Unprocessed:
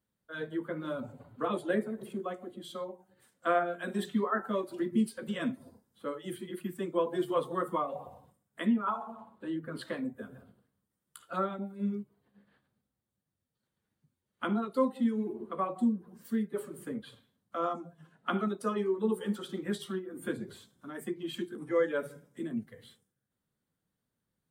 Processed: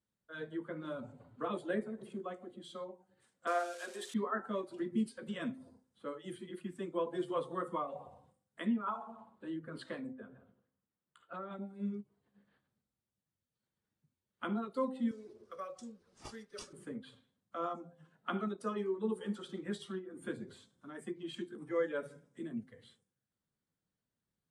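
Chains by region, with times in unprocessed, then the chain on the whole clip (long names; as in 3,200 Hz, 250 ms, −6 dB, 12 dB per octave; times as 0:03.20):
0:03.47–0:04.14: spike at every zero crossing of −32 dBFS + high-pass filter 370 Hz 24 dB per octave
0:10.13–0:11.51: low-shelf EQ 200 Hz −5 dB + downward compressor, threshold −33 dBFS + moving average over 8 samples
0:15.11–0:16.73: drawn EQ curve 110 Hz 0 dB, 170 Hz −18 dB, 360 Hz −14 dB, 530 Hz 0 dB, 870 Hz −19 dB, 1,300 Hz 0 dB, 2,600 Hz −2 dB, 11,000 Hz +12 dB + bad sample-rate conversion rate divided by 3×, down none, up hold
whole clip: low-pass filter 9,300 Hz 24 dB per octave; hum removal 258.4 Hz, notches 3; every ending faded ahead of time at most 570 dB per second; level −5.5 dB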